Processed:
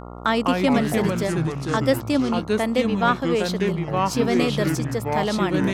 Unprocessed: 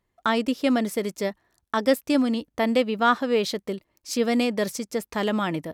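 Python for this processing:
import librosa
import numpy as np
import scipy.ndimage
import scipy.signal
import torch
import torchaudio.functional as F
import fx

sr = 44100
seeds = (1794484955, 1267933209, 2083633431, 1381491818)

y = fx.echo_pitch(x, sr, ms=135, semitones=-4, count=3, db_per_echo=-3.0)
y = fx.dmg_buzz(y, sr, base_hz=60.0, harmonics=23, level_db=-39.0, tilt_db=-3, odd_only=False)
y = fx.rider(y, sr, range_db=10, speed_s=2.0)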